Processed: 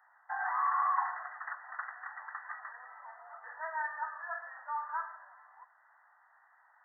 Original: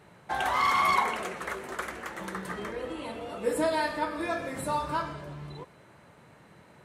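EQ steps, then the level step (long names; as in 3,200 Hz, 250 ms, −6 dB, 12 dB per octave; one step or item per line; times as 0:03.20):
Chebyshev high-pass filter 740 Hz, order 5
linear-phase brick-wall low-pass 2,000 Hz
spectral tilt +3.5 dB per octave
−5.0 dB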